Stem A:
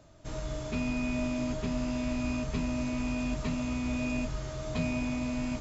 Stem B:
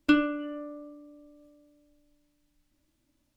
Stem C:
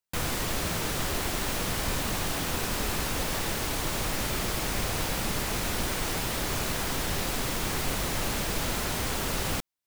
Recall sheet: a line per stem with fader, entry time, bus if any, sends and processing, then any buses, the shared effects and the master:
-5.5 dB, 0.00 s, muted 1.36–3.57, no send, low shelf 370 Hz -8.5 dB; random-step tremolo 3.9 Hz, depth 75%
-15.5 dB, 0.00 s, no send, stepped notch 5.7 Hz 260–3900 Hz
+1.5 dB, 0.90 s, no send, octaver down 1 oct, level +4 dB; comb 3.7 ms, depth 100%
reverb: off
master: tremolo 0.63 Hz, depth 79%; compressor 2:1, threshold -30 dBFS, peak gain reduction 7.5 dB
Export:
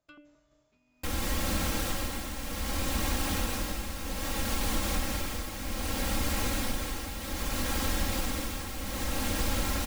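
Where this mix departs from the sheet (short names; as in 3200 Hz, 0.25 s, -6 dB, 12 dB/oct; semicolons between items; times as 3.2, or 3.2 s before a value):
stem A -5.5 dB -> -16.0 dB; stem B -15.5 dB -> -26.0 dB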